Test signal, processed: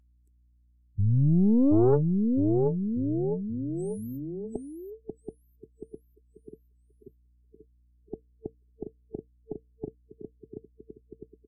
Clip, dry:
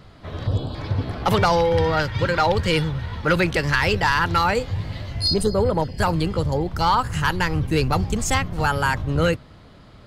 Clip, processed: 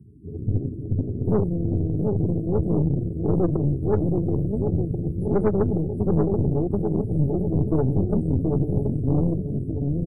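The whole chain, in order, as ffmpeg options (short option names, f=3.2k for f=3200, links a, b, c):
-filter_complex "[0:a]highpass=100,acrossover=split=150|2200[a][b][c];[c]acompressor=threshold=-38dB:ratio=6[d];[a][b][d]amix=inputs=3:normalize=0,afftfilt=real='re*(1-between(b*sr/4096,450,7900))':imag='im*(1-between(b*sr/4096,450,7900))':win_size=4096:overlap=0.75,acrossover=split=2800[e][f];[f]acompressor=threshold=-57dB:ratio=4:attack=1:release=60[g];[e][g]amix=inputs=2:normalize=0,asplit=2[h][i];[i]aecho=0:1:730|1387|1978|2510|2989:0.631|0.398|0.251|0.158|0.1[j];[h][j]amix=inputs=2:normalize=0,aeval=exprs='val(0)+0.00112*(sin(2*PI*60*n/s)+sin(2*PI*2*60*n/s)/2+sin(2*PI*3*60*n/s)/3+sin(2*PI*4*60*n/s)/4+sin(2*PI*5*60*n/s)/5)':c=same,aeval=exprs='(tanh(10*val(0)+0.7)-tanh(0.7))/10':c=same,afftdn=nr=16:nf=-49,volume=6dB" -ar 32000 -c:a libvorbis -b:a 64k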